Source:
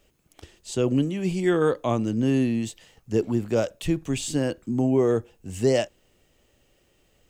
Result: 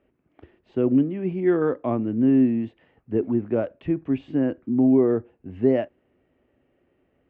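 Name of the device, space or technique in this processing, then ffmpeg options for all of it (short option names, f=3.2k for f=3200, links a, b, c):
bass cabinet: -af "highpass=61,equalizer=f=260:t=q:w=4:g=9,equalizer=f=370:t=q:w=4:g=5,equalizer=f=650:t=q:w=4:g=3,lowpass=f=2.2k:w=0.5412,lowpass=f=2.2k:w=1.3066,volume=-3.5dB"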